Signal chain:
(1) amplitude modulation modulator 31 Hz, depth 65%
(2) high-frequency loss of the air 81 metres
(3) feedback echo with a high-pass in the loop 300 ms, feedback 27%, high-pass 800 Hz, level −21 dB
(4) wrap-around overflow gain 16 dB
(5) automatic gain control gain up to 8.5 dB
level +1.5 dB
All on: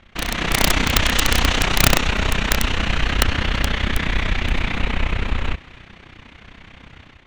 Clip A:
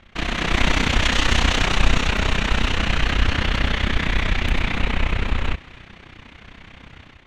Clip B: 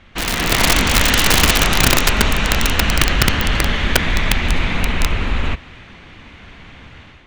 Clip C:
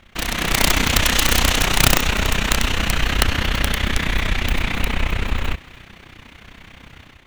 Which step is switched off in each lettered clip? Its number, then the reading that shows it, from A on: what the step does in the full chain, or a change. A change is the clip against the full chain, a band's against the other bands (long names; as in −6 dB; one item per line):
4, distortion level −6 dB
1, change in crest factor −3.5 dB
2, 8 kHz band +3.0 dB